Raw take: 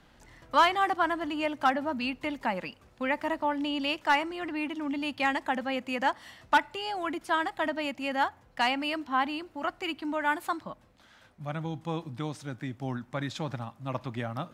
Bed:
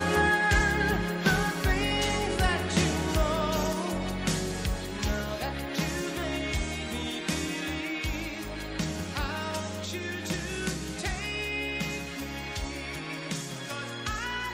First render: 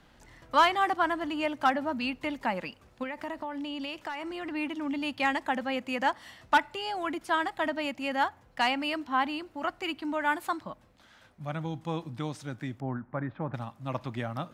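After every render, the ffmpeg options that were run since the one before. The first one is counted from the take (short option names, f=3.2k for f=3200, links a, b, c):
-filter_complex "[0:a]asettb=1/sr,asplit=3[a][b][c];[a]atrim=end=3.034[d];[b]atrim=start=3.03:end=4.55,asetpts=PTS-STARTPTS,afade=t=in:d=0.004:c=qsin,afade=t=out:st=1.516:d=0.004:c=qsin,acompressor=threshold=-32dB:ratio=10:attack=3.2:release=140:knee=1:detection=peak[e];[c]atrim=start=4.546[f];[d][e]acrossfade=d=0.004:c1=hsin:c2=qsin[g];[g][f]acrossfade=d=0.004:c1=qsin:c2=hsin,asettb=1/sr,asplit=3[h][i][j];[h]atrim=end=12.804[k];[i]atrim=start=12.8:end=13.54,asetpts=PTS-STARTPTS,afade=t=in:d=0.004:c=qsin,afade=t=out:st=0.736:d=0.004:c=qsin,lowpass=f=1.7k:w=0.5412,lowpass=f=1.7k:w=1.3066[l];[j]atrim=start=13.536[m];[k][l]acrossfade=d=0.004:c1=hsin:c2=qsin[n];[n][m]acrossfade=d=0.004:c1=qsin:c2=hsin"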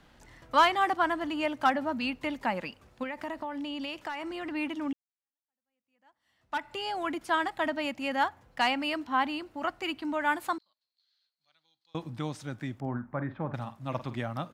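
-filter_complex "[0:a]asettb=1/sr,asplit=3[a][b][c];[a]atrim=end=10.584[d];[b]atrim=start=10.58:end=11.95,asetpts=PTS-STARTPTS,afade=t=in:d=0.004:c=qsin,afade=t=out:st=1.366:d=0.004:c=qsin,bandpass=f=4.3k:t=q:w=15[e];[c]atrim=start=11.946[f];[d][e]acrossfade=d=0.004:c1=hsin:c2=qsin[g];[g][f]acrossfade=d=0.004:c1=qsin:c2=hsin,asplit=3[h][i][j];[h]afade=t=out:st=12.81:d=0.02[k];[i]asplit=2[l][m];[m]adelay=49,volume=-12dB[n];[l][n]amix=inputs=2:normalize=0,afade=t=in:st=12.81:d=0.02,afade=t=out:st=14.17:d=0.02[o];[j]afade=t=in:st=14.17:d=0.02[p];[k][o][p]amix=inputs=3:normalize=0,asplit=2[q][r];[q]atrim=end=4.93,asetpts=PTS-STARTPTS,afade=t=out:st=4.926:d=0.004:c=hsin[s];[r]atrim=start=4.93,asetpts=PTS-STARTPTS,afade=t=in:d=1.81:c=exp[t];[s][t]concat=n=2:v=0:a=1"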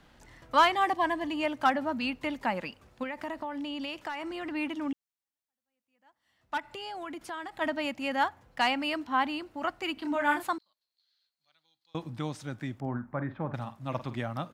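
-filter_complex "[0:a]asettb=1/sr,asplit=3[a][b][c];[a]atrim=end=0.744[d];[b]atrim=start=0.74:end=1.44,asetpts=PTS-STARTPTS,afade=t=in:d=0.004:c=qsin,afade=t=out:st=0.696:d=0.004:c=qsin,asuperstop=centerf=1400:order=8:qfactor=4.7[e];[c]atrim=start=1.436[f];[d][e]acrossfade=d=0.004:c1=hsin:c2=qsin[g];[g][f]acrossfade=d=0.004:c1=qsin:c2=hsin,asplit=3[h][i][j];[h]afade=t=out:st=6.59:d=0.02[k];[i]acompressor=threshold=-38dB:ratio=3:attack=3.2:release=140:knee=1:detection=peak,afade=t=in:st=6.59:d=0.02,afade=t=out:st=7.6:d=0.02[l];[j]afade=t=in:st=7.6:d=0.02[m];[k][l][m]amix=inputs=3:normalize=0,asettb=1/sr,asplit=3[n][o][p];[n]atrim=end=9.944[q];[o]atrim=start=9.94:end=10.46,asetpts=PTS-STARTPTS,afade=t=in:d=0.004:c=qsin,afade=t=out:st=0.516:d=0.004:c=qsin,asplit=2[r][s];[s]adelay=31,volume=-4dB[t];[r][t]amix=inputs=2:normalize=0,atrim=end_sample=22932[u];[p]atrim=start=10.456[v];[q][u]acrossfade=d=0.004:c1=hsin:c2=qsin[w];[w][v]acrossfade=d=0.004:c1=qsin:c2=hsin"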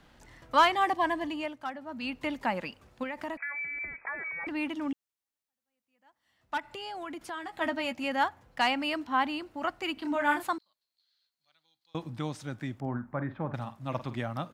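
-filter_complex "[0:a]asettb=1/sr,asplit=3[a][b][c];[a]atrim=end=3.374[d];[b]atrim=start=3.37:end=4.47,asetpts=PTS-STARTPTS,afade=t=in:d=0.004:c=qsin,afade=t=out:st=1.096:d=0.004:c=qsin,lowpass=f=2.2k:t=q:w=0.5098,lowpass=f=2.2k:t=q:w=0.6013,lowpass=f=2.2k:t=q:w=0.9,lowpass=f=2.2k:t=q:w=2.563,afreqshift=-2600[e];[c]atrim=start=4.466[f];[d][e]acrossfade=d=0.004:c1=hsin:c2=qsin[g];[g][f]acrossfade=d=0.004:c1=qsin:c2=hsin,asettb=1/sr,asplit=3[h][i][j];[h]atrim=end=7.344[k];[i]atrim=start=7.34:end=8.04,asetpts=PTS-STARTPTS,afade=t=in:d=0.004:c=qsin,afade=t=out:st=0.696:d=0.004:c=qsin,asplit=2[l][m];[m]adelay=12,volume=-7.5dB[n];[l][n]amix=inputs=2:normalize=0,atrim=end_sample=30870[o];[j]atrim=start=8.036[p];[k][o]acrossfade=d=0.004:c1=hsin:c2=qsin[q];[q][p]acrossfade=d=0.004:c1=qsin:c2=hsin,asplit=3[r][s][t];[r]atrim=end=1.6,asetpts=PTS-STARTPTS,afade=t=out:st=1.22:d=0.38:silence=0.251189[u];[s]atrim=start=1.6:end=1.85,asetpts=PTS-STARTPTS,volume=-12dB[v];[t]atrim=start=1.85,asetpts=PTS-STARTPTS,afade=t=in:d=0.38:silence=0.251189[w];[u][v][w]concat=n=3:v=0:a=1"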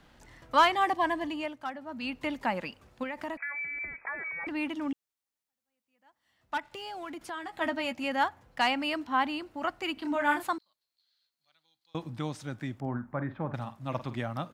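-filter_complex "[0:a]asettb=1/sr,asplit=3[a][b][c];[a]atrim=end=6.644[d];[b]atrim=start=6.64:end=7.17,asetpts=PTS-STARTPTS,afade=t=in:d=0.004:c=qsin,afade=t=out:st=0.526:d=0.004:c=qsin,aeval=exprs='sgn(val(0))*max(abs(val(0))-0.00119,0)':c=same[e];[c]atrim=start=7.166[f];[d][e]acrossfade=d=0.004:c1=hsin:c2=qsin[g];[g][f]acrossfade=d=0.004:c1=qsin:c2=hsin"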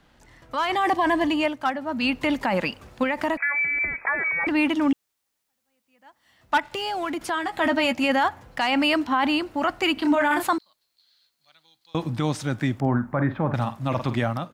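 -af "alimiter=level_in=1dB:limit=-24dB:level=0:latency=1:release=14,volume=-1dB,dynaudnorm=f=460:g=3:m=12dB"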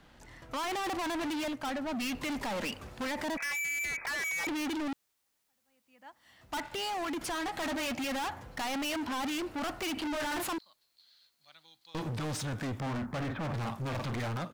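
-af "volume=33dB,asoftclip=hard,volume=-33dB"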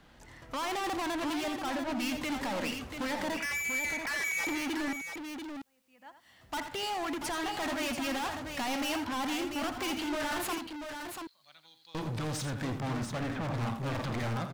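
-af "aecho=1:1:84|688:0.316|0.447"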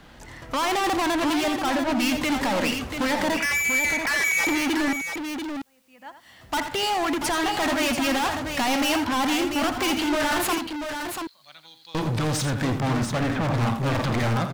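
-af "volume=10dB"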